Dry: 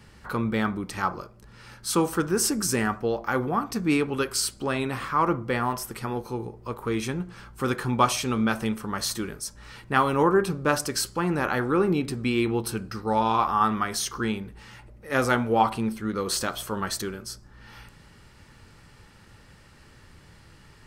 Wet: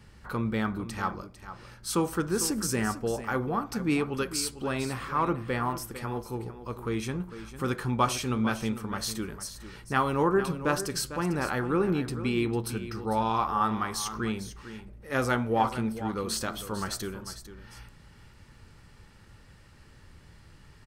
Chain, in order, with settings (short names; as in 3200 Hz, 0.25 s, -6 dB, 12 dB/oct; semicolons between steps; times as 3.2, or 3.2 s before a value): low shelf 120 Hz +6 dB; on a send: echo 0.45 s -12.5 dB; on the sum: gain -4.5 dB